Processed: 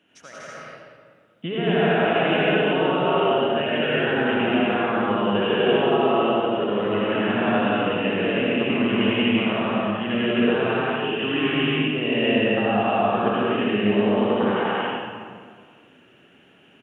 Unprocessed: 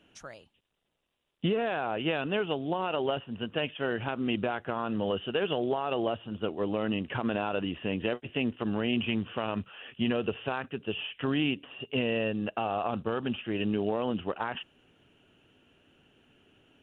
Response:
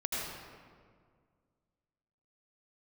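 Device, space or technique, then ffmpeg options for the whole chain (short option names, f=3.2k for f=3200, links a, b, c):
stadium PA: -filter_complex "[0:a]highpass=140,equalizer=f=1.9k:t=o:w=0.69:g=5,aecho=1:1:183.7|242:0.891|0.891[a];[1:a]atrim=start_sample=2205[b];[a][b]afir=irnorm=-1:irlink=0"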